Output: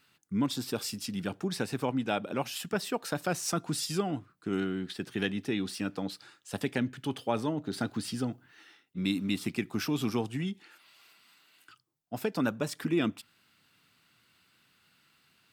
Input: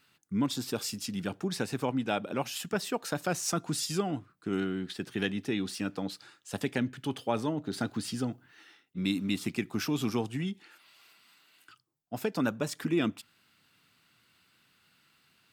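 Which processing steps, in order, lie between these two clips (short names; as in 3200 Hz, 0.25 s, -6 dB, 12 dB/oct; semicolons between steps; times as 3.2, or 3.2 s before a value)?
dynamic EQ 6700 Hz, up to -4 dB, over -59 dBFS, Q 5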